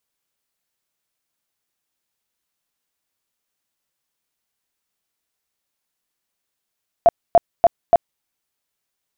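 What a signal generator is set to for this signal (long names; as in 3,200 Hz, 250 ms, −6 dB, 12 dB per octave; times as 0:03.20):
tone bursts 683 Hz, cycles 19, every 0.29 s, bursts 4, −6.5 dBFS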